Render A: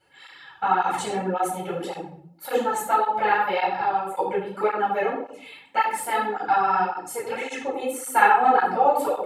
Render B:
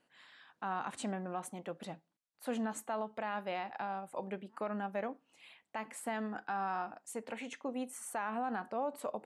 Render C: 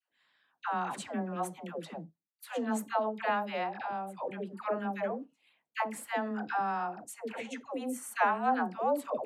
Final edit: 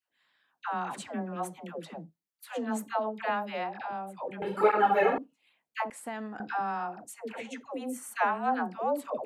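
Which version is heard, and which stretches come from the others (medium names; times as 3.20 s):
C
4.42–5.18 s: from A
5.90–6.40 s: from B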